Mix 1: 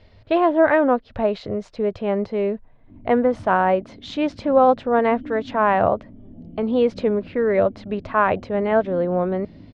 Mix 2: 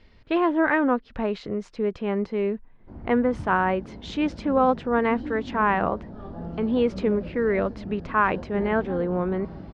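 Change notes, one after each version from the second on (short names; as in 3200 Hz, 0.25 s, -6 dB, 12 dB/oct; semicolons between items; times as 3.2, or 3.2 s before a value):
background: remove vocal tract filter i; master: add fifteen-band EQ 100 Hz -12 dB, 630 Hz -11 dB, 4000 Hz -4 dB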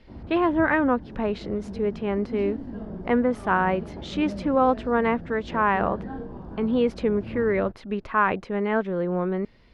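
background: entry -2.80 s; master: remove LPF 8100 Hz 24 dB/oct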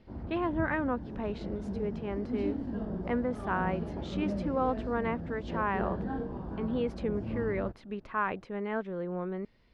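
speech -9.5 dB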